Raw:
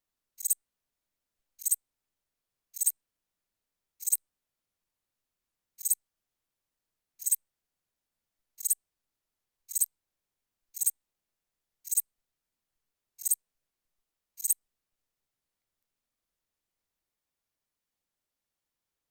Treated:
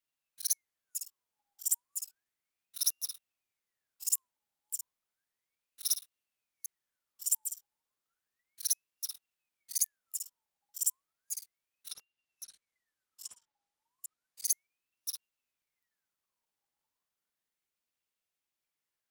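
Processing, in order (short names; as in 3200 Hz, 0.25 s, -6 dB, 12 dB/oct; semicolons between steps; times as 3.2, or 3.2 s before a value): reverse delay 0.37 s, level -8 dB; 11.9–14.45 treble ducked by the level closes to 2400 Hz, closed at -28.5 dBFS; ring modulator with a swept carrier 1800 Hz, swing 55%, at 0.33 Hz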